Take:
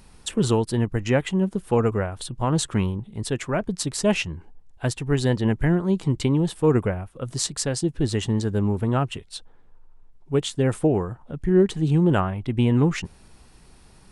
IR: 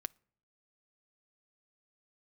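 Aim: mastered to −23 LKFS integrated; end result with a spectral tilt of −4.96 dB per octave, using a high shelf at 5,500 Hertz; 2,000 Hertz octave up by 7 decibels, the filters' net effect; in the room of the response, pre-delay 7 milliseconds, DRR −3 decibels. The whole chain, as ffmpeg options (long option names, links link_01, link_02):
-filter_complex "[0:a]equalizer=frequency=2000:width_type=o:gain=8,highshelf=frequency=5500:gain=8.5,asplit=2[link_01][link_02];[1:a]atrim=start_sample=2205,adelay=7[link_03];[link_02][link_03]afir=irnorm=-1:irlink=0,volume=5.5dB[link_04];[link_01][link_04]amix=inputs=2:normalize=0,volume=-5.5dB"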